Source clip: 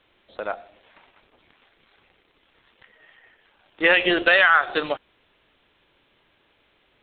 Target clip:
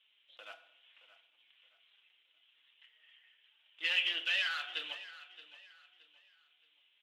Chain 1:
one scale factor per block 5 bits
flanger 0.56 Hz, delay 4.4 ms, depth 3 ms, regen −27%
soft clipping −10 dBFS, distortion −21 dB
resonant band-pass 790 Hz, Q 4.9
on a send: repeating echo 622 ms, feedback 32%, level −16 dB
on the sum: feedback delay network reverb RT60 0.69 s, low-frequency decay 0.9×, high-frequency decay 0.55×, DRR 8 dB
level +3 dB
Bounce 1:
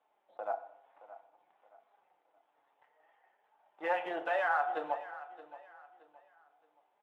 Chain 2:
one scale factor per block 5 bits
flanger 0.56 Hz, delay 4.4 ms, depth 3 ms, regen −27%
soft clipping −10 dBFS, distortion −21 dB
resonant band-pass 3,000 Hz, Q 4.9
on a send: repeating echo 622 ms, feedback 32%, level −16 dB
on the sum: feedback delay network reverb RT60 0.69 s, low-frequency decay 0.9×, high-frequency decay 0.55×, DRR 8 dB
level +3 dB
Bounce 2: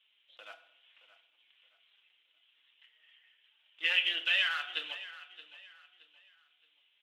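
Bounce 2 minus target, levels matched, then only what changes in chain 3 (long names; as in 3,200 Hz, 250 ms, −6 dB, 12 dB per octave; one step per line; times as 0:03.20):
soft clipping: distortion −12 dB
change: soft clipping −19.5 dBFS, distortion −10 dB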